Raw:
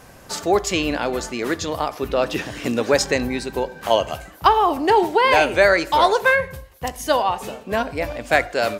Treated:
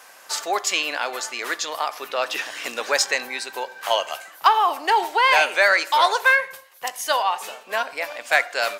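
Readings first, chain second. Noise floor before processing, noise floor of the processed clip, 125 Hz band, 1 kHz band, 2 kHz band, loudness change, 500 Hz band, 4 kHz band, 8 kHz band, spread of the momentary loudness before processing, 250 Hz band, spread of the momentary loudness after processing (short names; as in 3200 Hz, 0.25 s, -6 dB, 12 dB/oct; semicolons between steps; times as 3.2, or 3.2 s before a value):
-45 dBFS, -47 dBFS, under -25 dB, -1.0 dB, +1.5 dB, -1.5 dB, -7.5 dB, +2.0 dB, +2.5 dB, 12 LU, -16.5 dB, 13 LU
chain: HPF 920 Hz 12 dB/oct; in parallel at -5.5 dB: soft clip -13.5 dBFS, distortion -15 dB; on the sum: gain -1 dB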